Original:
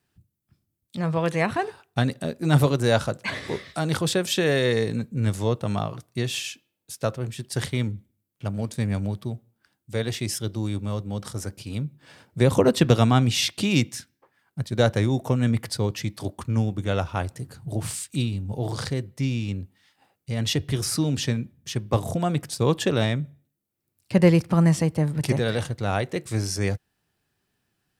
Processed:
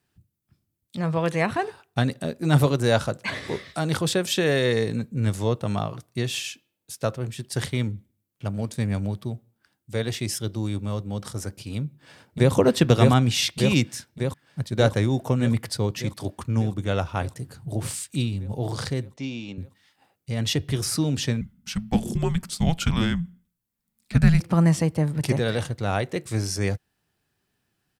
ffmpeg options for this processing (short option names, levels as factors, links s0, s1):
-filter_complex "[0:a]asplit=2[s0][s1];[s1]afade=t=in:st=11.77:d=0.01,afade=t=out:st=12.53:d=0.01,aecho=0:1:600|1200|1800|2400|3000|3600|4200|4800|5400|6000|6600|7200:0.841395|0.588977|0.412284|0.288599|0.202019|0.141413|0.0989893|0.0692925|0.0485048|0.0339533|0.0237673|0.0166371[s2];[s0][s2]amix=inputs=2:normalize=0,asettb=1/sr,asplit=3[s3][s4][s5];[s3]atrim=end=19.164[s6];[s4]atrim=start=19.16:end=19.58,asetpts=PTS-STARTPTS,afade=t=in:d=0.004:c=qsin,afade=t=out:st=0.416:d=0.004:c=qsin,highpass=260,equalizer=f=430:t=q:w=4:g=-4,equalizer=f=730:t=q:w=4:g=4,equalizer=f=1300:t=q:w=4:g=-4,equalizer=f=1900:t=q:w=4:g=-7,equalizer=f=5000:t=q:w=4:g=-6,lowpass=f=6100:w=0.5412,lowpass=f=6100:w=1.3066[s7];[s5]atrim=start=19.576[s8];[s6][s7]acrossfade=d=0.004:c1=hsin:c2=qsin[s9];[s9][s8]acrossfade=d=0.004:c1=qsin:c2=hsin,asettb=1/sr,asplit=3[s10][s11][s12];[s10]atrim=end=21.414[s13];[s11]atrim=start=21.41:end=24.4,asetpts=PTS-STARTPTS,afade=t=in:d=0.004:c=qsin,afade=t=out:st=2.986:d=0.004:c=qsin,afreqshift=-320[s14];[s12]atrim=start=24.396[s15];[s13][s14]acrossfade=d=0.004:c1=hsin:c2=qsin[s16];[s16][s15]acrossfade=d=0.004:c1=qsin:c2=hsin"